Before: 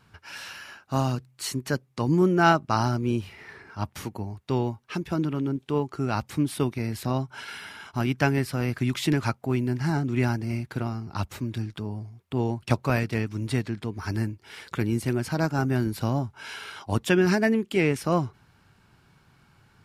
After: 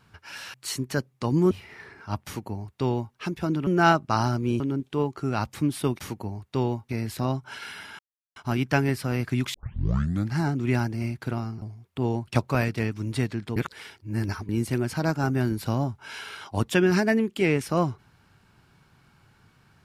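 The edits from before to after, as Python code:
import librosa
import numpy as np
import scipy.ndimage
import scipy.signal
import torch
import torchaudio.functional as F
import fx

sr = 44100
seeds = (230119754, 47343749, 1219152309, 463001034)

y = fx.edit(x, sr, fx.cut(start_s=0.54, length_s=0.76),
    fx.move(start_s=2.27, length_s=0.93, to_s=5.36),
    fx.duplicate(start_s=3.94, length_s=0.9, to_s=6.75),
    fx.insert_silence(at_s=7.85, length_s=0.37),
    fx.tape_start(start_s=9.03, length_s=0.81),
    fx.cut(start_s=11.11, length_s=0.86),
    fx.reverse_span(start_s=13.91, length_s=0.93), tone=tone)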